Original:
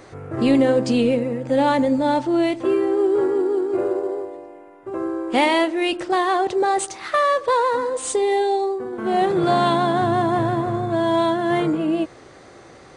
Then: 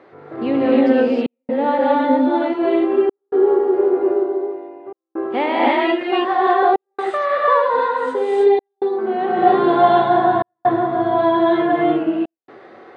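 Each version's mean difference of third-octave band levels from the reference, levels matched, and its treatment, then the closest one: 8.0 dB: HPF 270 Hz 12 dB/oct; air absorption 410 m; non-linear reverb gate 0.34 s rising, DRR -5.5 dB; step gate "xxxxxxxxxxx..xxx" 131 bpm -60 dB; gain -1 dB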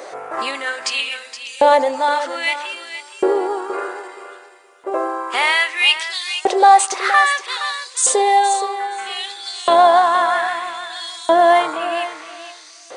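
10.5 dB: high shelf 4000 Hz +4 dB; limiter -14.5 dBFS, peak gain reduction 7.5 dB; LFO high-pass saw up 0.62 Hz 520–6300 Hz; on a send: thinning echo 0.47 s, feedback 17%, high-pass 170 Hz, level -11 dB; on the sum: gain +7.5 dB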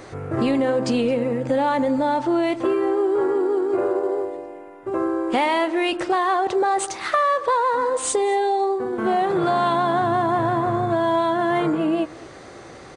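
2.5 dB: dynamic EQ 1100 Hz, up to +7 dB, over -32 dBFS, Q 0.74; in parallel at +2.5 dB: limiter -12.5 dBFS, peak gain reduction 9 dB; on the sum: compressor 3:1, threshold -16 dBFS, peak gain reduction 8.5 dB; echo 0.217 s -23 dB; gain -3.5 dB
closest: third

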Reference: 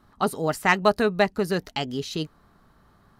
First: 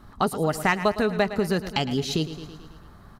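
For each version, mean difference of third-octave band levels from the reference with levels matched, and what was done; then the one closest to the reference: 5.5 dB: low shelf 110 Hz +8 dB; feedback echo 0.109 s, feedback 58%, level -15 dB; compressor 2.5:1, threshold -30 dBFS, peak gain reduction 12 dB; gain +7 dB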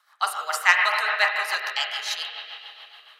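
15.5 dB: Bessel high-pass 1400 Hz, order 6; spring tank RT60 3 s, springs 32/37/50 ms, chirp 55 ms, DRR -0.5 dB; rotary speaker horn 7 Hz; gain +8 dB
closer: first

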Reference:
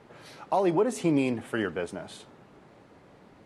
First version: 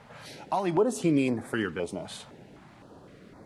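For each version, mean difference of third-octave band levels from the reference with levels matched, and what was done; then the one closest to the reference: 3.0 dB: in parallel at -2.5 dB: compressor, threshold -38 dBFS, peak gain reduction 17 dB; on the sum: stepped notch 3.9 Hz 350–2900 Hz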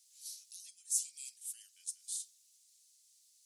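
22.5 dB: in parallel at +2 dB: compressor, threshold -38 dBFS, peak gain reduction 17 dB; on the sum: inverse Chebyshev high-pass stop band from 1100 Hz, stop band 80 dB; gain +7 dB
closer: first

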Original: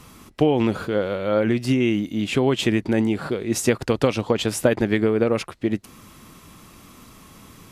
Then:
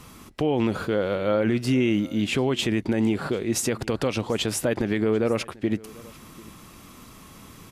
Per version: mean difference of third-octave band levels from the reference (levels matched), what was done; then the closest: 2.5 dB: limiter -13.5 dBFS, peak gain reduction 9 dB; on a send: echo 0.742 s -22.5 dB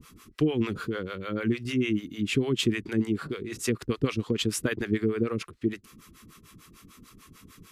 5.0 dB: harmonic tremolo 6.7 Hz, depth 100%, crossover 480 Hz; band shelf 700 Hz -12 dB 1 oct; gain -1.5 dB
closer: first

